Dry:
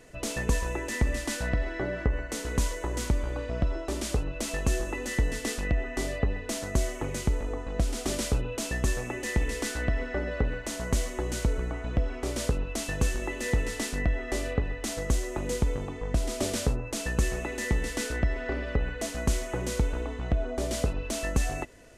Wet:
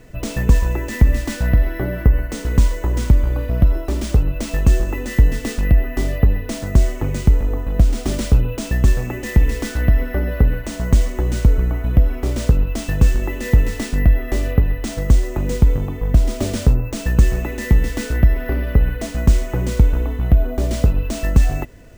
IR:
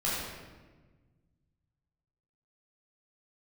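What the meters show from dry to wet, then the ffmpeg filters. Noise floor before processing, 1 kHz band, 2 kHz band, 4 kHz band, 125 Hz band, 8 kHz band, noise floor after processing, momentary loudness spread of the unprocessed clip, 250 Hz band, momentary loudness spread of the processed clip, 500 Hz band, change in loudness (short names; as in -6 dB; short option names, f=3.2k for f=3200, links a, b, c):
-38 dBFS, +4.5 dB, +4.0 dB, +3.0 dB, +14.0 dB, +1.0 dB, -30 dBFS, 3 LU, +10.0 dB, 5 LU, +5.5 dB, +11.5 dB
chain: -af "bass=f=250:g=10,treble=f=4k:g=-3,acrusher=samples=3:mix=1:aa=0.000001,volume=4.5dB"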